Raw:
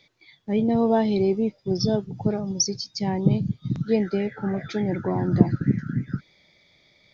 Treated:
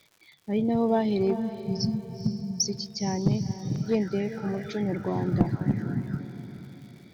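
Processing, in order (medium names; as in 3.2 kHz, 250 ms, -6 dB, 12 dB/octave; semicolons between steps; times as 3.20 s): crackle 160 per s -42 dBFS; 1.35–2.64 s: brick-wall FIR band-stop 260–4000 Hz; echo that smears into a reverb 460 ms, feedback 43%, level -11.5 dB; one-sided clip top -14 dBFS; trim -3.5 dB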